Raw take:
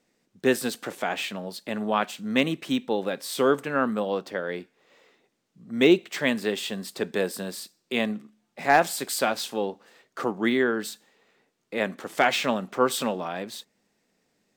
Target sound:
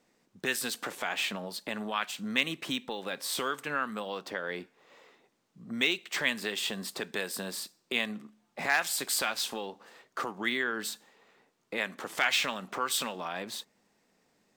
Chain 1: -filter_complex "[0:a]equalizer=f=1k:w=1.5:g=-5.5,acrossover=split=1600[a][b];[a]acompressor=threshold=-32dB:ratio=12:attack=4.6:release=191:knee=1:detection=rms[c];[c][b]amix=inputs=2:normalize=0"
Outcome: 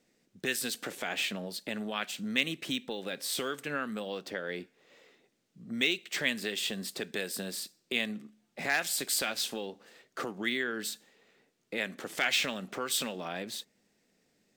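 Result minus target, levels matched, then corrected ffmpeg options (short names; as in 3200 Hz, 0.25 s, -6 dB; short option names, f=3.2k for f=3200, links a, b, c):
1000 Hz band -4.0 dB
-filter_complex "[0:a]equalizer=f=1k:w=1.5:g=5,acrossover=split=1600[a][b];[a]acompressor=threshold=-32dB:ratio=12:attack=4.6:release=191:knee=1:detection=rms[c];[c][b]amix=inputs=2:normalize=0"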